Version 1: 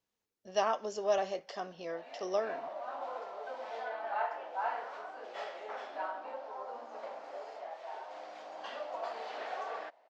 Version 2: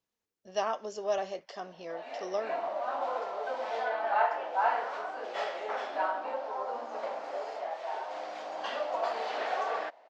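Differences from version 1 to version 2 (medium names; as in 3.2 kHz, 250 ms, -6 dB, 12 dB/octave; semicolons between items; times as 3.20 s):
speech: send off; background +7.5 dB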